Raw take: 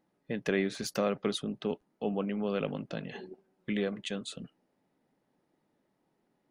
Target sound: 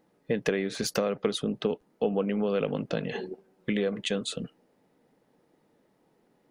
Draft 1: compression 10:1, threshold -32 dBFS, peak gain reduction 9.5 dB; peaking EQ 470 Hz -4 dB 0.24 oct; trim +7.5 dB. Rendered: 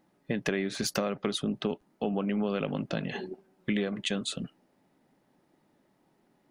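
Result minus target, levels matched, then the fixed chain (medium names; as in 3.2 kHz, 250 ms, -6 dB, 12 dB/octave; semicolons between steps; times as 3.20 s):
500 Hz band -3.0 dB
compression 10:1, threshold -32 dBFS, peak gain reduction 9.5 dB; peaking EQ 470 Hz +7 dB 0.24 oct; trim +7.5 dB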